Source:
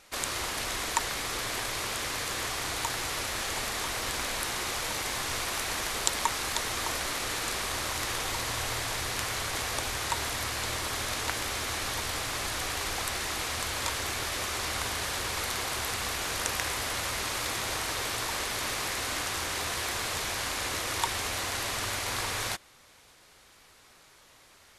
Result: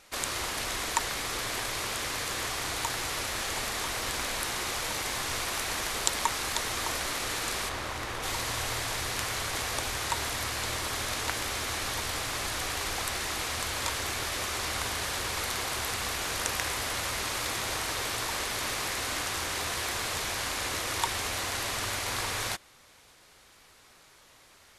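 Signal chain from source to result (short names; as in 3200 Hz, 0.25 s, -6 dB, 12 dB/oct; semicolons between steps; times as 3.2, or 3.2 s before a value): 7.68–8.22 high shelf 4800 Hz -> 2900 Hz -11 dB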